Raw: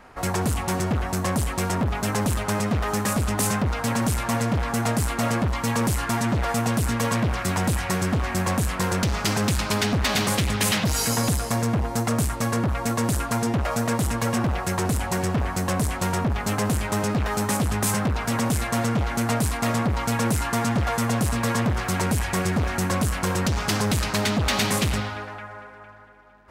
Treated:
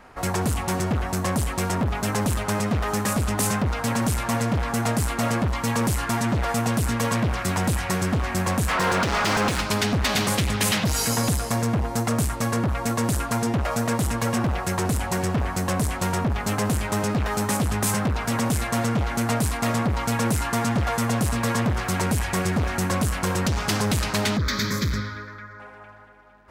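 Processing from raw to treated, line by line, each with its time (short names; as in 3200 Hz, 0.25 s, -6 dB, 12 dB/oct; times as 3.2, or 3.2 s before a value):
8.68–9.61 overdrive pedal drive 23 dB, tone 2400 Hz, clips at -14 dBFS
24.37–25.6 fixed phaser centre 2800 Hz, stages 6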